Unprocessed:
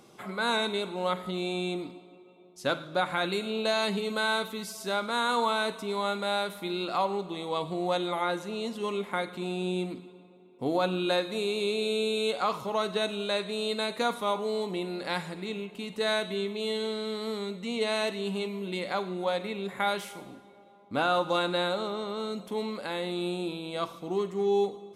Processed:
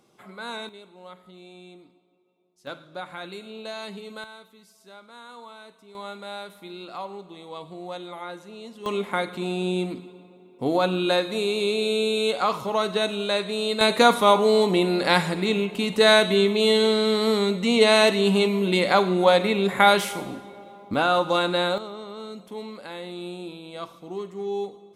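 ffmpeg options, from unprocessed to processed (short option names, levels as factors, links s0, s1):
-af "asetnsamples=n=441:p=0,asendcmd='0.69 volume volume -15dB;2.67 volume volume -8dB;4.24 volume volume -17dB;5.95 volume volume -7dB;8.86 volume volume 5dB;13.81 volume volume 12dB;20.94 volume volume 5dB;21.78 volume volume -3.5dB',volume=0.447"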